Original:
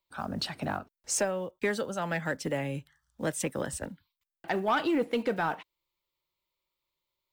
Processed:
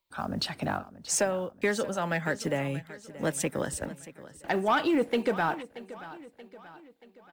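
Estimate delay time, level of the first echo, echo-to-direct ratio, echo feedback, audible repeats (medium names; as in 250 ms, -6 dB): 630 ms, -16.5 dB, -15.5 dB, 49%, 3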